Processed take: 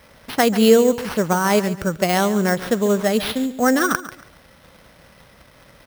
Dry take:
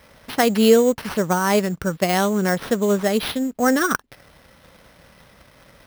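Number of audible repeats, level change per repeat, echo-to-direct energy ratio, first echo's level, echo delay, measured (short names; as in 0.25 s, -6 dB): 2, -11.5 dB, -14.0 dB, -14.5 dB, 0.14 s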